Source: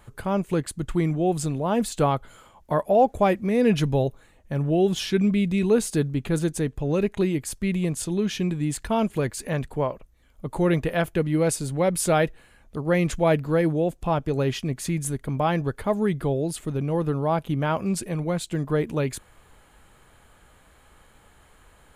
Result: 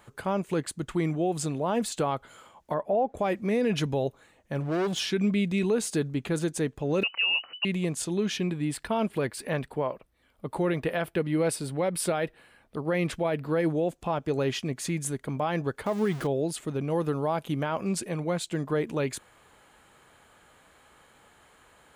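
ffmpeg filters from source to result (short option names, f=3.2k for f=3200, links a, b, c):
-filter_complex "[0:a]asettb=1/sr,asplit=3[a][b][c];[a]atrim=end=2.744[d];[b]atrim=start=2.74:end=3.17,asetpts=PTS-STARTPTS,afade=t=in:d=0.004:c=qsin,afade=t=out:st=0.426:d=0.004:c=qsin,lowpass=f=1.4k:p=1[e];[c]atrim=start=3.166[f];[d][e]acrossfade=d=0.004:c1=hsin:c2=qsin[g];[g][f]acrossfade=d=0.004:c1=qsin:c2=hsin,asplit=3[h][i][j];[h]afade=t=out:st=4.59:d=0.02[k];[i]asoftclip=type=hard:threshold=-23dB,afade=t=in:st=4.59:d=0.02,afade=t=out:st=4.99:d=0.02[l];[j]afade=t=in:st=4.99:d=0.02[m];[k][l][m]amix=inputs=3:normalize=0,asettb=1/sr,asplit=3[n][o][p];[n]atrim=end=7.034[q];[o]atrim=start=7.03:end=7.65,asetpts=PTS-STARTPTS,afade=t=in:d=0.004:c=qsin,afade=t=out:st=0.616:d=0.004:c=qsin,lowpass=f=2.6k:t=q:w=0.5098,lowpass=f=2.6k:t=q:w=0.6013,lowpass=f=2.6k:t=q:w=0.9,lowpass=f=2.6k:t=q:w=2.563,afreqshift=-3000[r];[p]atrim=start=7.646[s];[q][r]acrossfade=d=0.004:c1=hsin:c2=qsin[t];[t][s]acrossfade=d=0.004:c1=qsin:c2=hsin,asettb=1/sr,asplit=3[u][v][w];[u]atrim=end=8.374[x];[v]atrim=start=8.37:end=13.6,asetpts=PTS-STARTPTS,afade=t=in:d=0.004:c=qsin,afade=t=out:st=5.226:d=0.004:c=qsin,equalizer=f=6.7k:t=o:w=0.36:g=-11.5[y];[w]atrim=start=13.596[z];[x][y]acrossfade=d=0.004:c1=hsin:c2=qsin[aa];[aa][z]acrossfade=d=0.004:c1=qsin:c2=hsin,asettb=1/sr,asplit=3[ab][ac][ad];[ab]atrim=end=15.864[ae];[ac]atrim=start=15.86:end=16.27,asetpts=PTS-STARTPTS,afade=t=in:d=0.004:c=qsin,afade=t=out:st=0.406:d=0.004:c=qsin,aeval=exprs='val(0)+0.5*0.0237*sgn(val(0))':c=same[af];[ad]atrim=start=16.266[ag];[ae][af]acrossfade=d=0.004:c1=hsin:c2=qsin[ah];[ah][ag]acrossfade=d=0.004:c1=qsin:c2=hsin,asettb=1/sr,asplit=3[ai][aj][ak];[ai]atrim=end=16.904[al];[aj]atrim=start=16.9:end=17.63,asetpts=PTS-STARTPTS,afade=t=in:d=0.004:c=qsin,afade=t=out:st=0.726:d=0.004:c=qsin,highshelf=f=5.7k:g=7[am];[ak]atrim=start=17.626[an];[al][am]acrossfade=d=0.004:c1=hsin:c2=qsin[ao];[ao][an]acrossfade=d=0.004:c1=qsin:c2=hsin,highpass=f=240:p=1,equalizer=f=12k:w=1.6:g=-6,alimiter=limit=-18dB:level=0:latency=1:release=73"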